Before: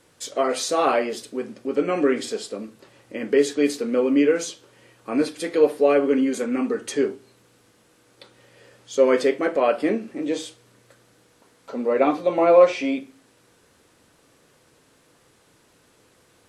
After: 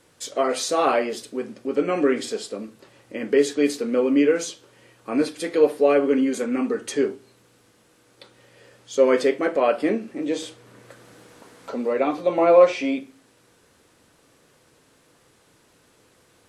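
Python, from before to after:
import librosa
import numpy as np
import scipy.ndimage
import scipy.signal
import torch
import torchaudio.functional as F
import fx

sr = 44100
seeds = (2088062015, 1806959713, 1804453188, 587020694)

y = fx.band_squash(x, sr, depth_pct=40, at=(10.42, 12.18))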